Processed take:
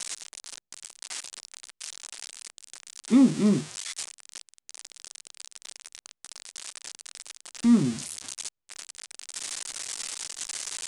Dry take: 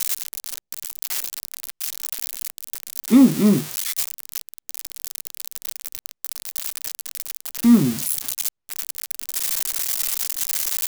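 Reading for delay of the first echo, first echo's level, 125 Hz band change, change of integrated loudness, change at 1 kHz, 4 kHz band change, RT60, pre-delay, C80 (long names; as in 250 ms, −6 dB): no echo audible, no echo audible, −6.0 dB, −5.5 dB, −6.0 dB, −6.0 dB, no reverb audible, no reverb audible, no reverb audible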